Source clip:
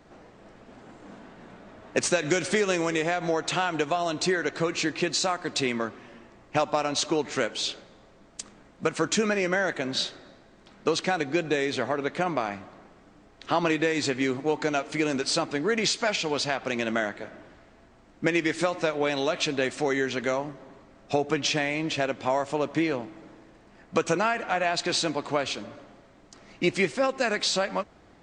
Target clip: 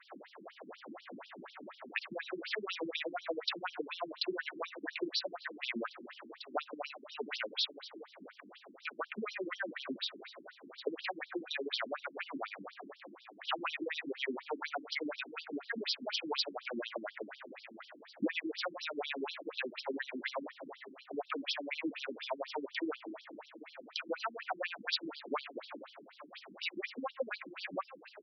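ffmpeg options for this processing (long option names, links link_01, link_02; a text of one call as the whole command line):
ffmpeg -i in.wav -filter_complex "[0:a]lowshelf=frequency=290:gain=-10.5,acrossover=split=160|910[link_01][link_02][link_03];[link_02]asoftclip=type=tanh:threshold=-25.5dB[link_04];[link_01][link_04][link_03]amix=inputs=3:normalize=0,acompressor=threshold=-37dB:ratio=6,aecho=1:1:847|1694|2541:0.168|0.0487|0.0141,afftfilt=real='re*between(b*sr/1024,240*pow(4200/240,0.5+0.5*sin(2*PI*4.1*pts/sr))/1.41,240*pow(4200/240,0.5+0.5*sin(2*PI*4.1*pts/sr))*1.41)':imag='im*between(b*sr/1024,240*pow(4200/240,0.5+0.5*sin(2*PI*4.1*pts/sr))/1.41,240*pow(4200/240,0.5+0.5*sin(2*PI*4.1*pts/sr))*1.41)':win_size=1024:overlap=0.75,volume=8.5dB" out.wav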